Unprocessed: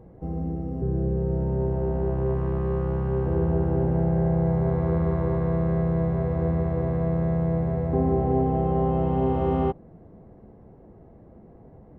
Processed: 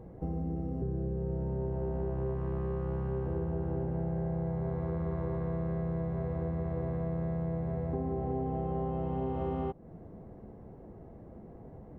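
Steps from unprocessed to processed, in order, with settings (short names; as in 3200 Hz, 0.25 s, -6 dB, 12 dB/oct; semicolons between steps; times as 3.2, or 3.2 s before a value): compressor 6:1, threshold -31 dBFS, peak gain reduction 12.5 dB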